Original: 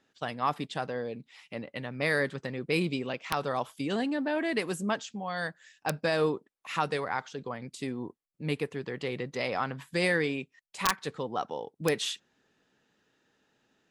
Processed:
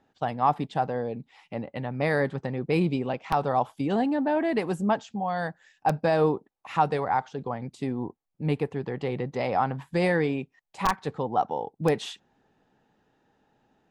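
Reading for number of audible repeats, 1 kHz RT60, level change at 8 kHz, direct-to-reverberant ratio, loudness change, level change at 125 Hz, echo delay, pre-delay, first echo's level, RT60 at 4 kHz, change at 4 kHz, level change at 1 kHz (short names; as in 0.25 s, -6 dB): none, none, n/a, none, +4.5 dB, +7.0 dB, none, none, none, none, -4.5 dB, +7.5 dB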